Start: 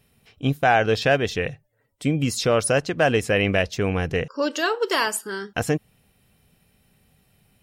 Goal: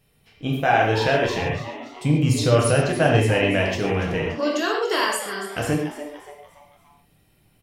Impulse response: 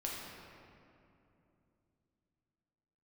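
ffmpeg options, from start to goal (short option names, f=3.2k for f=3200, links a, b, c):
-filter_complex "[0:a]asettb=1/sr,asplit=3[a][b][c];[a]atrim=end=1.384[d];[b]atrim=start=1.38:end=3.28,asetpts=PTS-STARTPTS,afade=t=in:d=0.004:c=qsin,afade=t=out:st=1.896:d=0.004:c=qsin,equalizer=f=120:w=1.9:g=10.5[e];[c]atrim=start=3.276[f];[d][e]acrossfade=d=0.004:c1=hsin:c2=qsin[g];[g][f]acrossfade=d=0.004:c1=qsin:c2=hsin,asplit=5[h][i][j][k][l];[i]adelay=288,afreqshift=140,volume=-12.5dB[m];[j]adelay=576,afreqshift=280,volume=-19.8dB[n];[k]adelay=864,afreqshift=420,volume=-27.2dB[o];[l]adelay=1152,afreqshift=560,volume=-34.5dB[p];[h][m][n][o][p]amix=inputs=5:normalize=0[q];[1:a]atrim=start_sample=2205,atrim=end_sample=6615[r];[q][r]afir=irnorm=-1:irlink=0"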